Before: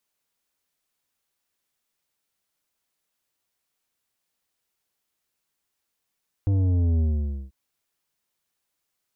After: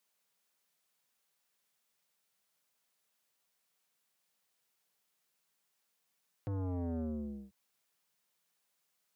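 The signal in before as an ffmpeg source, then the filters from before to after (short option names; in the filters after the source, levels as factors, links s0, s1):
-f lavfi -i "aevalsrc='0.106*clip((1.04-t)/0.51,0,1)*tanh(2.99*sin(2*PI*100*1.04/log(65/100)*(exp(log(65/100)*t/1.04)-1)))/tanh(2.99)':d=1.04:s=44100"
-af "highpass=f=130:w=0.5412,highpass=f=130:w=1.3066,equalizer=f=310:w=4.2:g=-8.5,asoftclip=type=tanh:threshold=0.0211"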